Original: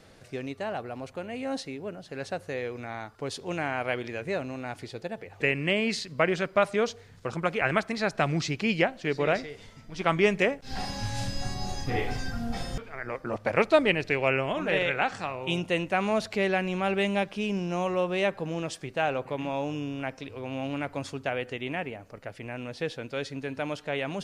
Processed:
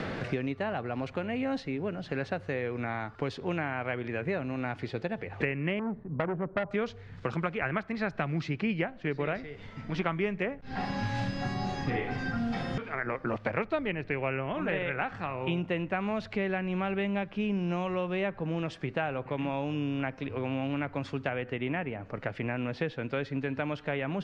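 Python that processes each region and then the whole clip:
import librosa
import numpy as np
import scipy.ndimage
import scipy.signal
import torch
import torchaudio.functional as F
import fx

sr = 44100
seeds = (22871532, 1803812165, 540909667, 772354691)

y = fx.chain(x, sr, fx.lowpass(hz=1000.0, slope=24),
    fx.transformer_sat(knee_hz=1400.0), at=(5.79, 6.71))
y = scipy.signal.sosfilt(scipy.signal.butter(2, 2000.0, 'lowpass', fs=sr, output='sos'), y)
y = fx.peak_eq(y, sr, hz=600.0, db=-5.5, octaves=2.0)
y = fx.band_squash(y, sr, depth_pct=100)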